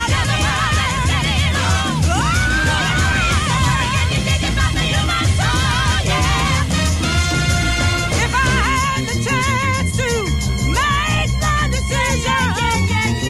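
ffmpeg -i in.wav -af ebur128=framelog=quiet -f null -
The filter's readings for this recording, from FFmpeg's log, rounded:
Integrated loudness:
  I:         -16.5 LUFS
  Threshold: -26.5 LUFS
Loudness range:
  LRA:         1.1 LU
  Threshold: -36.4 LUFS
  LRA low:   -17.2 LUFS
  LRA high:  -16.0 LUFS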